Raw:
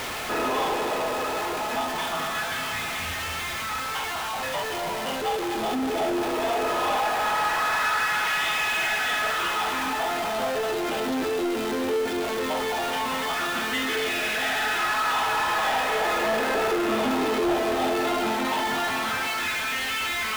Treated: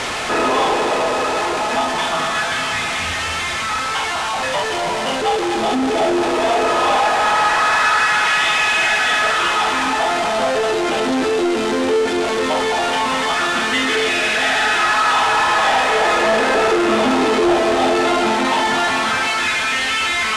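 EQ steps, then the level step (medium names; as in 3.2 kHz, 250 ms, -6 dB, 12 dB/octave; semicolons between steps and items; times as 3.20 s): low-pass 9.3 kHz 24 dB/octave; bass shelf 150 Hz -3 dB; +9.0 dB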